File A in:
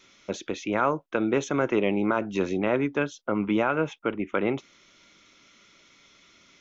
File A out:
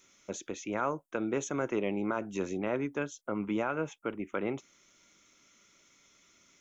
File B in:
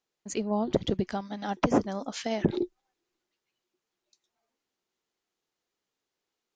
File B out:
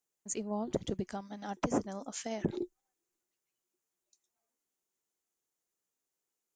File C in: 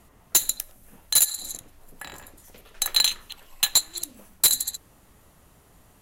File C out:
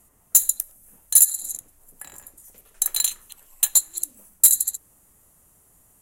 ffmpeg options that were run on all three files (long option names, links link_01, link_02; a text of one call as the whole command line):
ffmpeg -i in.wav -af "highshelf=frequency=6000:width_type=q:width=1.5:gain=11.5,volume=-7.5dB" out.wav